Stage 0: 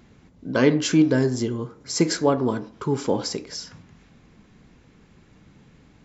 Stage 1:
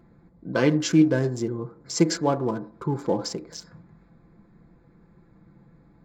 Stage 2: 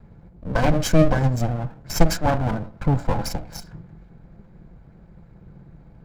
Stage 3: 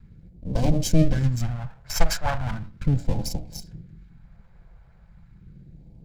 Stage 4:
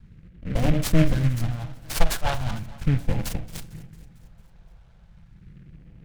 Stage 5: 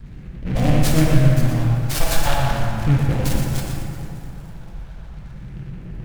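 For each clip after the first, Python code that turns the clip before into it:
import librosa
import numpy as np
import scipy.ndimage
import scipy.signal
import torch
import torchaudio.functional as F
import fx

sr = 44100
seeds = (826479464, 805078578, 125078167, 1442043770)

y1 = fx.wiener(x, sr, points=15)
y1 = y1 + 0.5 * np.pad(y1, (int(5.9 * sr / 1000.0), 0))[:len(y1)]
y1 = y1 * librosa.db_to_amplitude(-2.5)
y2 = fx.lower_of_two(y1, sr, delay_ms=1.3)
y2 = fx.low_shelf(y2, sr, hz=190.0, db=11.0)
y2 = y2 * librosa.db_to_amplitude(3.0)
y3 = fx.phaser_stages(y2, sr, stages=2, low_hz=250.0, high_hz=1400.0, hz=0.37, feedback_pct=30)
y3 = y3 * librosa.db_to_amplitude(-1.5)
y4 = fx.echo_feedback(y3, sr, ms=225, feedback_pct=59, wet_db=-19)
y4 = fx.noise_mod_delay(y4, sr, seeds[0], noise_hz=1800.0, depth_ms=0.075)
y5 = fx.power_curve(y4, sr, exponent=0.7)
y5 = y5 + 10.0 ** (-7.0 / 20.0) * np.pad(y5, (int(119 * sr / 1000.0), 0))[:len(y5)]
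y5 = fx.rev_plate(y5, sr, seeds[1], rt60_s=2.7, hf_ratio=0.45, predelay_ms=0, drr_db=-1.0)
y5 = y5 * librosa.db_to_amplitude(-2.5)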